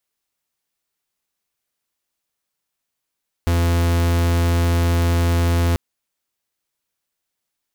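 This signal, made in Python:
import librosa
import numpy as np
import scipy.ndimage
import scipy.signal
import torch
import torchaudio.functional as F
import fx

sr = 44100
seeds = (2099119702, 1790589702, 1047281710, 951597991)

y = fx.pulse(sr, length_s=2.29, hz=85.2, level_db=-17.0, duty_pct=44)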